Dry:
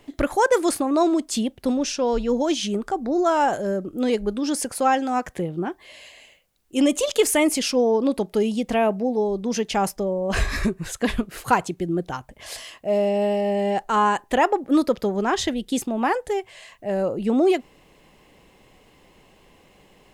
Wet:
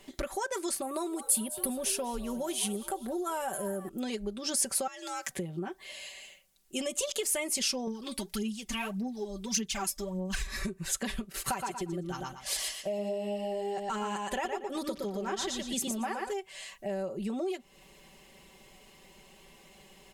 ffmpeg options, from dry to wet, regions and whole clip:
-filter_complex "[0:a]asettb=1/sr,asplit=3[a][b][c];[a]atrim=end=0.824[d];[b]atrim=start=0.82:end=3.89,asetpts=PTS-STARTPTS,afade=t=in:d=0.004:c=qsin,afade=t=out:st=3.066:d=0.004:c=qsin,highshelf=f=8k:t=q:w=3:g=12.5,asplit=5[e][f][g][h][i];[f]adelay=201,afreqshift=140,volume=-17dB[j];[g]adelay=402,afreqshift=280,volume=-23.2dB[k];[h]adelay=603,afreqshift=420,volume=-29.4dB[l];[i]adelay=804,afreqshift=560,volume=-35.6dB[m];[e][j][k][l][m]amix=inputs=5:normalize=0,atrim=end_sample=135387[n];[c]atrim=start=3.886[o];[d][n]acrossfade=d=0.004:c1=hsin:c2=qsin[p];[p][o]acrossfade=d=0.004:c1=qsin:c2=hsin,asettb=1/sr,asplit=3[q][r][s];[q]atrim=end=4.874[t];[r]atrim=start=4.87:end=5.31,asetpts=PTS-STARTPTS,afade=t=in:d=0.004:c=qsin,afade=t=out:st=0.436:d=0.004:c=qsin,tiltshelf=f=1.2k:g=-8,acompressor=threshold=-30dB:ratio=4:attack=3.2:release=140:knee=1:detection=peak,afreqshift=66[u];[s]atrim=start=5.306[v];[t][u]acrossfade=d=0.004:c1=hsin:c2=qsin[w];[w][v]acrossfade=d=0.004:c1=qsin:c2=hsin,asettb=1/sr,asplit=3[x][y][z];[x]atrim=end=7.874[aa];[y]atrim=start=7.87:end=10.47,asetpts=PTS-STARTPTS,afade=t=in:d=0.004:c=qsin,afade=t=out:st=2.596:d=0.004:c=qsin,equalizer=f=550:w=0.88:g=-14.5,aphaser=in_gain=1:out_gain=1:delay=3.5:decay=0.68:speed=1.7:type=sinusoidal[ab];[z]atrim=start=10.466[ac];[aa][ab]acrossfade=d=0.004:c1=hsin:c2=qsin[ad];[ad][ac]acrossfade=d=0.004:c1=qsin:c2=hsin,asettb=1/sr,asplit=3[ae][af][ag];[ae]atrim=end=11.324[ah];[af]atrim=start=11.32:end=16.33,asetpts=PTS-STARTPTS,afade=t=in:d=0.004:c=qsin,afade=t=out:st=5.006:d=0.004:c=qsin,agate=range=-11dB:threshold=-41dB:ratio=16:release=100:detection=peak,aecho=1:1:117|234|351:0.596|0.149|0.0372,atrim=end_sample=220941,aphaser=in_gain=1:out_gain=1:delay=3.1:decay=0.24:speed=1.1:type=triangular[ai];[ag]atrim=start=16.326[aj];[ah][ai]acrossfade=d=0.004:c1=hsin:c2=qsin[ak];[ak][aj]acrossfade=d=0.004:c1=qsin:c2=hsin,aecho=1:1:5.2:0.75,acompressor=threshold=-27dB:ratio=5,equalizer=f=9.6k:t=o:w=2.8:g=9,volume=-6dB"

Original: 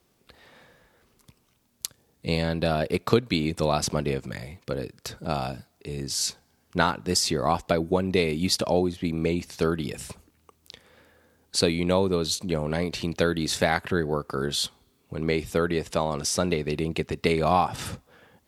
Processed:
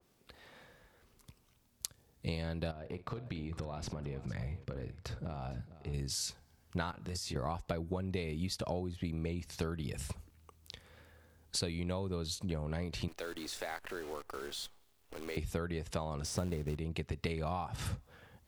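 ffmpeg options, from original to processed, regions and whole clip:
-filter_complex "[0:a]asettb=1/sr,asplit=3[a][b][c];[a]atrim=end=2.714[d];[b]atrim=start=2.71:end=5.94,asetpts=PTS-STARTPTS,afade=t=in:d=0.004:c=qsin,afade=t=out:st=3.226:d=0.004:c=qsin,lowpass=f=1.8k:p=1,acompressor=threshold=-32dB:ratio=10:attack=3.2:release=140:knee=1:detection=peak,aecho=1:1:49|456:0.211|0.168,atrim=end_sample=142443[e];[c]atrim=start=5.936[f];[d][e]acrossfade=d=0.004:c1=hsin:c2=qsin[g];[g][f]acrossfade=d=0.004:c1=qsin:c2=hsin,asettb=1/sr,asplit=3[h][i][j];[h]atrim=end=6.914[k];[i]atrim=start=6.91:end=7.36,asetpts=PTS-STARTPTS,afade=t=in:d=0.004:c=qsin,afade=t=out:st=0.446:d=0.004:c=qsin,bandreject=f=50:t=h:w=6,bandreject=f=100:t=h:w=6,bandreject=f=150:t=h:w=6,acompressor=threshold=-37dB:ratio=3:attack=3.2:release=140:knee=1:detection=peak,asplit=2[l][m];[m]adelay=24,volume=-3.5dB[n];[l][n]amix=inputs=2:normalize=0,atrim=end_sample=19845[o];[j]atrim=start=7.356[p];[k][o]acrossfade=d=0.004:c1=hsin:c2=qsin[q];[q][p]acrossfade=d=0.004:c1=qsin:c2=hsin,asettb=1/sr,asplit=3[r][s][t];[r]atrim=end=13.084[u];[s]atrim=start=13.08:end=15.37,asetpts=PTS-STARTPTS,afade=t=in:d=0.004:c=qsin,afade=t=out:st=2.286:d=0.004:c=qsin,highpass=f=290:w=0.5412,highpass=f=290:w=1.3066,acompressor=threshold=-39dB:ratio=2:attack=3.2:release=140:knee=1:detection=peak,acrusher=bits=8:dc=4:mix=0:aa=0.000001[v];[t]atrim=start=15.366[w];[u][v]acrossfade=d=0.004:c1=hsin:c2=qsin[x];[x][w]acrossfade=d=0.004:c1=qsin:c2=hsin,asettb=1/sr,asplit=3[y][z][aa];[y]atrim=end=16.254[ab];[z]atrim=start=16.25:end=16.77,asetpts=PTS-STARTPTS,afade=t=in:d=0.004:c=qsin,afade=t=out:st=0.516:d=0.004:c=qsin,tiltshelf=f=1.4k:g=5.5,acrusher=bits=4:mode=log:mix=0:aa=0.000001[ac];[aa]atrim=start=16.766[ad];[ab][ac]acrossfade=d=0.004:c1=hsin:c2=qsin[ae];[ae][ad]acrossfade=d=0.004:c1=qsin:c2=hsin,asubboost=boost=3.5:cutoff=130,acompressor=threshold=-29dB:ratio=6,adynamicequalizer=threshold=0.00355:dfrequency=2200:dqfactor=0.7:tfrequency=2200:tqfactor=0.7:attack=5:release=100:ratio=0.375:range=1.5:mode=cutabove:tftype=highshelf,volume=-4dB"

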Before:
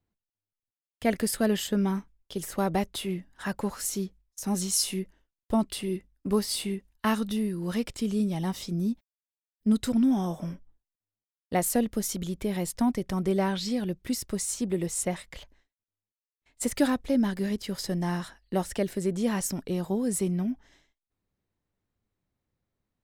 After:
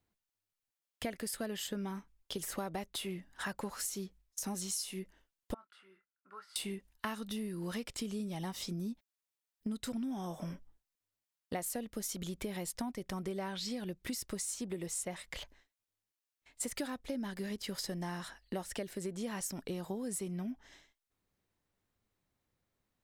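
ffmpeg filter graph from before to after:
-filter_complex "[0:a]asettb=1/sr,asplit=3[a][b][c];[a]atrim=end=5.544[d];[b]atrim=start=5.54:end=6.56,asetpts=PTS-STARTPTS,afade=t=in:d=0.004:c=qsin,afade=t=out:st=1.016:d=0.004:c=qsin,bandpass=f=1.4k:t=q:w=13,asplit=2[e][f];[f]adelay=26,volume=-9.5dB[g];[e][g]amix=inputs=2:normalize=0,atrim=end_sample=44982[h];[c]atrim=start=6.556[i];[d][h]acrossfade=d=0.004:c1=hsin:c2=qsin[j];[j][i]acrossfade=d=0.004:c1=qsin:c2=hsin,lowshelf=f=450:g=-6.5,acompressor=threshold=-40dB:ratio=6,volume=3.5dB"

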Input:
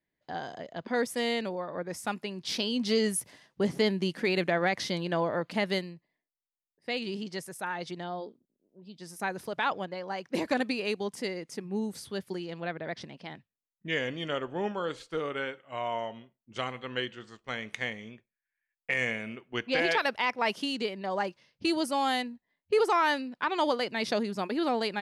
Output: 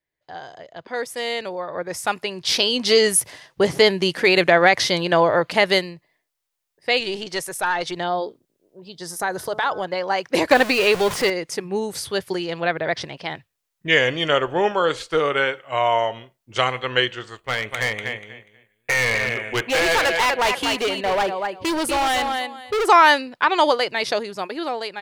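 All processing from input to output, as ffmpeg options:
-filter_complex "[0:a]asettb=1/sr,asplit=3[a][b][c];[a]atrim=end=7.004[d];[b]atrim=start=7:end=7.96,asetpts=PTS-STARTPTS,afade=t=in:d=0.004:c=qsin,afade=t=out:st=0.956:d=0.004:c=qsin,equalizer=f=100:w=0.85:g=-6,bandreject=f=5k:w=16,aeval=exprs='(tanh(20*val(0)+0.15)-tanh(0.15))/20':c=same[e];[c]atrim=start=7.956[f];[d][e]acrossfade=d=0.004:c1=hsin:c2=qsin[g];[g][f]acrossfade=d=0.004:c1=qsin:c2=hsin,asettb=1/sr,asplit=3[h][i][j];[h]atrim=end=8.924[k];[i]atrim=start=8.92:end=9.87,asetpts=PTS-STARTPTS,afade=t=in:d=0.004:c=qsin,afade=t=out:st=0.946:d=0.004:c=qsin,equalizer=f=2.5k:t=o:w=0.35:g=-12,bandreject=f=214.5:t=h:w=4,bandreject=f=429:t=h:w=4,bandreject=f=643.5:t=h:w=4,bandreject=f=858:t=h:w=4,bandreject=f=1.0725k:t=h:w=4,bandreject=f=1.287k:t=h:w=4,bandreject=f=1.5015k:t=h:w=4,acompressor=threshold=-34dB:ratio=2.5:attack=3.2:release=140:knee=1:detection=peak[l];[j]atrim=start=9.866[m];[k][l]acrossfade=d=0.004:c1=hsin:c2=qsin[n];[n][m]acrossfade=d=0.004:c1=qsin:c2=hsin,asettb=1/sr,asplit=3[o][p][q];[o]atrim=end=10.514[r];[p]atrim=start=10.51:end=11.3,asetpts=PTS-STARTPTS,afade=t=in:d=0.004:c=qsin,afade=t=out:st=0.786:d=0.004:c=qsin,aeval=exprs='val(0)+0.5*0.0224*sgn(val(0))':c=same,acrossover=split=4000[s][t];[t]acompressor=threshold=-44dB:ratio=4:attack=1:release=60[u];[s][u]amix=inputs=2:normalize=0[v];[q]atrim=start=11.296[w];[r][v]acrossfade=d=0.004:c1=hsin:c2=qsin[x];[x][w]acrossfade=d=0.004:c1=qsin:c2=hsin,asettb=1/sr,asplit=3[y][z][aa];[y]atrim=end=17.284[ab];[z]atrim=start=17.28:end=22.87,asetpts=PTS-STARTPTS,afade=t=in:d=0.004:c=qsin,afade=t=out:st=5.586:d=0.004:c=qsin,equalizer=f=5.5k:w=2.9:g=-13,aecho=1:1:243|486|729:0.376|0.0714|0.0136,atrim=end_sample=246519,asoftclip=type=hard:threshold=-31dB[ac];[aa]atrim=start=22.866[ad];[ab][ac]acrossfade=d=0.004:c1=hsin:c2=qsin[ae];[ae][ad]acrossfade=d=0.004:c1=qsin:c2=hsin,equalizer=f=220:t=o:w=0.84:g=-13,dynaudnorm=f=550:g=7:m=14dB,volume=1.5dB"

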